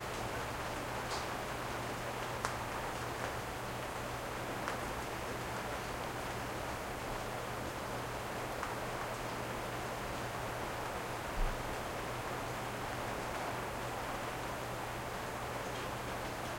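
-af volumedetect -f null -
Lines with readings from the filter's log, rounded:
mean_volume: -39.9 dB
max_volume: -14.4 dB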